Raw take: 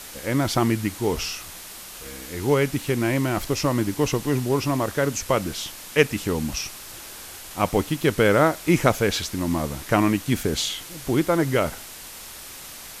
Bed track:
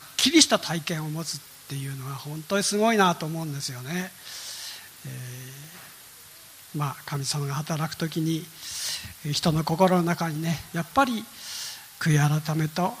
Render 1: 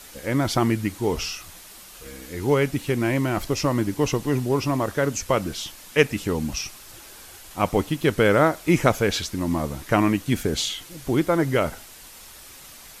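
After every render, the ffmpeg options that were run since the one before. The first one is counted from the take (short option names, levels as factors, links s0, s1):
-af "afftdn=nr=6:nf=-40"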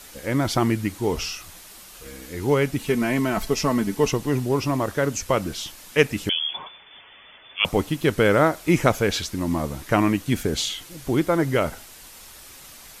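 -filter_complex "[0:a]asettb=1/sr,asplit=3[s0][s1][s2];[s0]atrim=end=2.794[s3];[s1]atrim=start=2.79:end=4.11,asetpts=PTS-STARTPTS,afade=t=in:d=0.004:c=qsin,afade=t=out:st=1.316:d=0.004:c=qsin,aecho=1:1:4.6:0.65,atrim=end_sample=58212[s4];[s2]atrim=start=4.106[s5];[s3][s4]acrossfade=d=0.004:c1=hsin:c2=qsin[s6];[s6][s5]acrossfade=d=0.004:c1=qsin:c2=hsin,asettb=1/sr,asplit=3[s7][s8][s9];[s7]atrim=end=6.294[s10];[s8]atrim=start=6.29:end=7.65,asetpts=PTS-STARTPTS,afade=t=in:d=0.004:c=qsin,afade=t=out:st=1.356:d=0.004:c=qsin,lowpass=f=3000:t=q:w=0.5098,lowpass=f=3000:t=q:w=0.6013,lowpass=f=3000:t=q:w=0.9,lowpass=f=3000:t=q:w=2.563,afreqshift=-3500[s11];[s9]atrim=start=7.646[s12];[s10][s11]acrossfade=d=0.004:c1=hsin:c2=qsin[s13];[s13][s12]acrossfade=d=0.004:c1=qsin:c2=hsin"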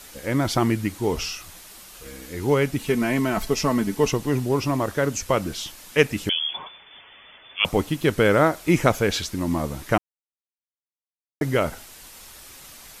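-filter_complex "[0:a]asplit=3[s0][s1][s2];[s0]atrim=end=9.98,asetpts=PTS-STARTPTS,afade=t=out:st=9.976:d=0.004:c=hsin[s3];[s1]atrim=start=9.98:end=11.41,asetpts=PTS-STARTPTS,volume=0[s4];[s2]atrim=start=11.41,asetpts=PTS-STARTPTS,afade=t=in:d=0.004:c=hsin[s5];[s3][s4][s5]concat=n=3:v=0:a=1"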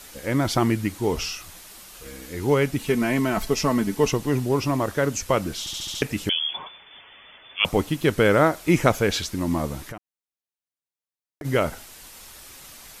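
-filter_complex "[0:a]asplit=3[s0][s1][s2];[s0]afade=t=out:st=9.82:d=0.02[s3];[s1]acompressor=threshold=0.02:ratio=6:attack=3.2:release=140:knee=1:detection=peak,afade=t=in:st=9.82:d=0.02,afade=t=out:st=11.44:d=0.02[s4];[s2]afade=t=in:st=11.44:d=0.02[s5];[s3][s4][s5]amix=inputs=3:normalize=0,asplit=7[s6][s7][s8][s9][s10][s11][s12];[s6]atrim=end=5.672[s13];[s7]atrim=start=5.598:end=5.672[s14];[s8]atrim=start=5.598:end=5.672[s15];[s9]atrim=start=5.598:end=5.672[s16];[s10]atrim=start=5.598:end=5.672[s17];[s11]atrim=start=5.598:end=5.672[s18];[s12]atrim=start=6.018[s19];[s13][s14]acrossfade=d=0.004:c1=hsin:c2=hsin[s20];[s20][s15]acrossfade=d=0.004:c1=hsin:c2=hsin[s21];[s21][s16]acrossfade=d=0.004:c1=hsin:c2=hsin[s22];[s22][s17]acrossfade=d=0.004:c1=hsin:c2=hsin[s23];[s23][s18]acrossfade=d=0.004:c1=hsin:c2=hsin[s24];[s24][s19]acrossfade=d=0.004:c1=hsin:c2=hsin"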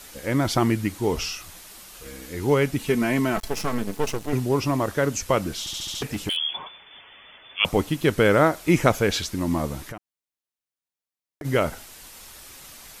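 -filter_complex "[0:a]asettb=1/sr,asplit=3[s0][s1][s2];[s0]atrim=end=3.364[s3];[s1]atrim=start=3.36:end=4.33,asetpts=PTS-STARTPTS,afade=t=in:d=0.004:c=qsin,afade=t=out:st=0.966:d=0.004:c=qsin,aeval=exprs='max(val(0),0)':c=same[s4];[s2]atrim=start=4.326[s5];[s3][s4]acrossfade=d=0.004:c1=hsin:c2=qsin[s6];[s6][s5]acrossfade=d=0.004:c1=qsin:c2=hsin,asettb=1/sr,asplit=3[s7][s8][s9];[s7]atrim=end=5.584[s10];[s8]atrim=start=5.58:end=6.37,asetpts=PTS-STARTPTS,afade=t=in:d=0.004:c=qsin,afade=t=out:st=0.786:d=0.004:c=qsin,volume=13.3,asoftclip=hard,volume=0.075[s11];[s9]atrim=start=6.366[s12];[s10][s11]acrossfade=d=0.004:c1=hsin:c2=qsin[s13];[s13][s12]acrossfade=d=0.004:c1=qsin:c2=hsin"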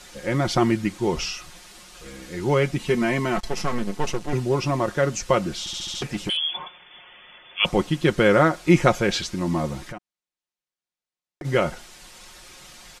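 -af "lowpass=7500,aecho=1:1:5.6:0.52"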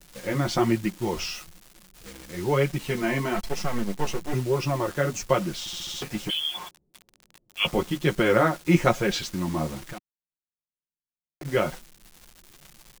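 -filter_complex "[0:a]flanger=delay=4.9:depth=9.5:regen=-11:speed=1.1:shape=triangular,acrossover=split=330[s0][s1];[s1]acrusher=bits=6:mix=0:aa=0.000001[s2];[s0][s2]amix=inputs=2:normalize=0"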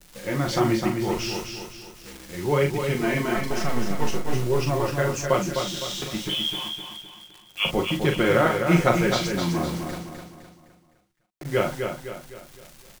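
-filter_complex "[0:a]asplit=2[s0][s1];[s1]adelay=41,volume=0.501[s2];[s0][s2]amix=inputs=2:normalize=0,aecho=1:1:256|512|768|1024|1280:0.501|0.221|0.097|0.0427|0.0188"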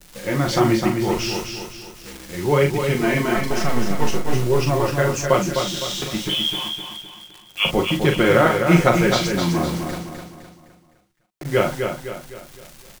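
-af "volume=1.68,alimiter=limit=0.794:level=0:latency=1"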